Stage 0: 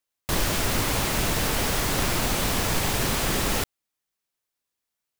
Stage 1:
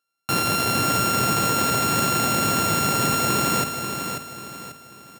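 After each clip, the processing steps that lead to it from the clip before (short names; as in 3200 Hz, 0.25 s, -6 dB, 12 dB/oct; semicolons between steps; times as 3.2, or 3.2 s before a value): sample sorter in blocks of 32 samples; HPF 110 Hz 24 dB/oct; feedback echo 0.54 s, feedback 38%, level -7 dB; gain +4 dB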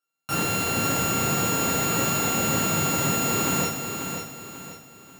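non-linear reverb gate 0.18 s falling, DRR -6.5 dB; gain -8.5 dB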